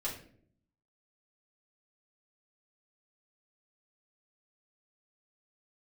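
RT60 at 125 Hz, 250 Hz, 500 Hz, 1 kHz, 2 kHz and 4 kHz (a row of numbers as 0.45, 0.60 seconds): 0.95, 0.90, 0.70, 0.45, 0.45, 0.35 seconds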